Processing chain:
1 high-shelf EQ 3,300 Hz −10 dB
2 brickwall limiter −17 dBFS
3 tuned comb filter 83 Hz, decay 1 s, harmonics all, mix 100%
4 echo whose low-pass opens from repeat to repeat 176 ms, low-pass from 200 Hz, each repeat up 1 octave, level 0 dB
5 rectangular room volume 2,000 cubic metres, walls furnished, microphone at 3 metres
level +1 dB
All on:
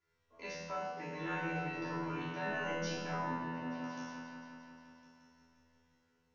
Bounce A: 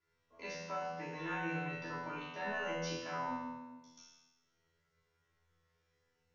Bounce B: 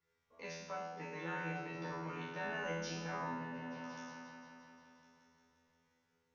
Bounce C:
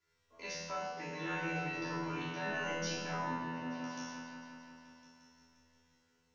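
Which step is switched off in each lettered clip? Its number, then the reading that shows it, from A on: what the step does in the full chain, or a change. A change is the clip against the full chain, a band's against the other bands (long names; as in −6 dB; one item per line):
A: 4, echo-to-direct ratio 2.0 dB to 0.0 dB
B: 5, echo-to-direct ratio 2.0 dB to −6.0 dB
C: 1, 4 kHz band +4.5 dB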